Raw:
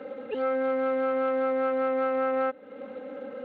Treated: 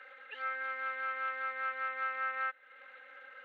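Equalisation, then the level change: resonant high-pass 1700 Hz, resonance Q 2.9; -5.0 dB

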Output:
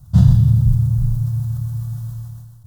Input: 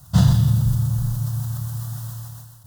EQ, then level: low shelf 86 Hz +11 dB; low shelf 500 Hz +11 dB; -10.0 dB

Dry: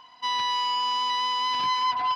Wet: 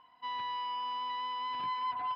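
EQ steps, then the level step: air absorption 410 m; -7.5 dB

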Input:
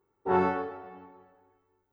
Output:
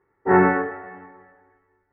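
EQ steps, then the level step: dynamic EQ 240 Hz, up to +6 dB, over -38 dBFS, Q 0.76; synth low-pass 1900 Hz, resonance Q 8.7; air absorption 420 m; +6.0 dB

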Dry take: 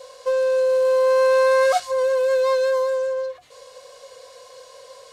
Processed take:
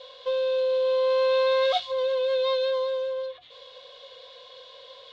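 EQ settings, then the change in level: dynamic EQ 1500 Hz, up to -7 dB, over -41 dBFS, Q 2; ladder low-pass 3700 Hz, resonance 80%; +7.0 dB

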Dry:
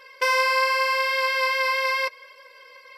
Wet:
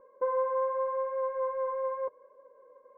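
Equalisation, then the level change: Bessel low-pass 600 Hz, order 6; low shelf 390 Hz +3.5 dB; 0.0 dB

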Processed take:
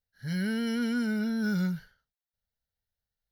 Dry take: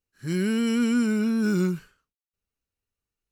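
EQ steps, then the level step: fixed phaser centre 1700 Hz, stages 8; 0.0 dB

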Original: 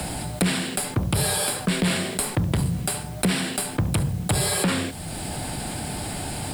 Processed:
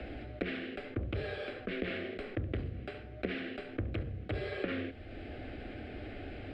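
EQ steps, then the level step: LPF 2500 Hz 24 dB/oct; fixed phaser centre 390 Hz, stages 4; -7.0 dB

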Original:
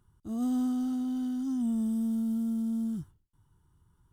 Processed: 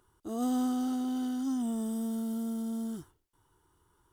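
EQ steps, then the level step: resonant low shelf 260 Hz -12.5 dB, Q 1.5; +6.0 dB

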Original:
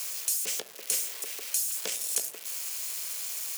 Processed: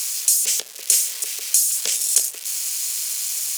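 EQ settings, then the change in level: HPF 130 Hz; bell 7200 Hz +13 dB 2.9 oct; 0.0 dB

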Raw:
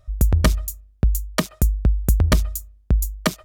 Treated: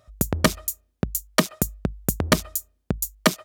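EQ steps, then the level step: HPF 180 Hz 12 dB/oct; +3.0 dB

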